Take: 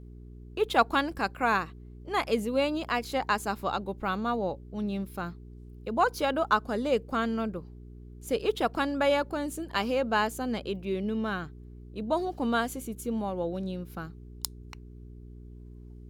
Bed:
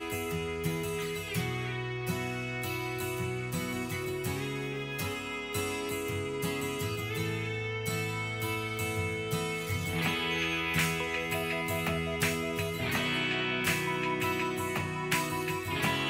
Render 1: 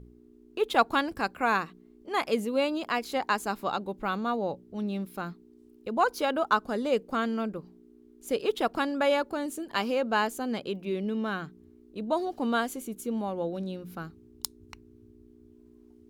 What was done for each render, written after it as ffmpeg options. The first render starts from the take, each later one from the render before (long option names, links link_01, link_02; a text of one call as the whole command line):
ffmpeg -i in.wav -af "bandreject=frequency=60:width_type=h:width=4,bandreject=frequency=120:width_type=h:width=4,bandreject=frequency=180:width_type=h:width=4" out.wav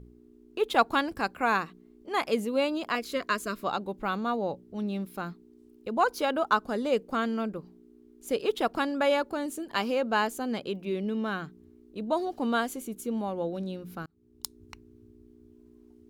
ffmpeg -i in.wav -filter_complex "[0:a]asettb=1/sr,asplit=3[link_01][link_02][link_03];[link_01]atrim=end=2.954[link_04];[link_02]atrim=start=2.95:end=3.64,asetpts=PTS-STARTPTS,afade=type=in:duration=0.004:curve=qsin,afade=type=out:start_time=0.686:duration=0.004:curve=qsin,asuperstop=centerf=840:order=8:qfactor=2.7[link_05];[link_03]atrim=start=3.636[link_06];[link_04][link_05]acrossfade=duration=0.004:curve1=hsin:curve2=qsin[link_07];[link_07][link_06]acrossfade=duration=0.004:curve1=qsin:curve2=hsin,asplit=2[link_08][link_09];[link_08]atrim=end=14.06,asetpts=PTS-STARTPTS,afade=type=out:start_time=14.056:duration=0.004:curve=hsin[link_10];[link_09]atrim=start=14.06,asetpts=PTS-STARTPTS,afade=type=in:duration=0.53[link_11];[link_10][link_11]concat=n=2:v=0:a=1" out.wav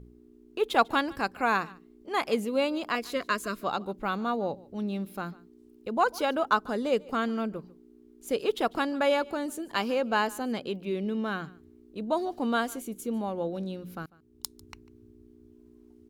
ffmpeg -i in.wav -af "aecho=1:1:147:0.075" out.wav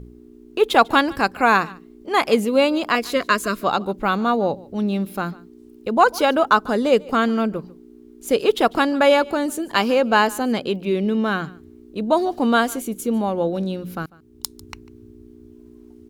ffmpeg -i in.wav -af "volume=10dB,alimiter=limit=-2dB:level=0:latency=1" out.wav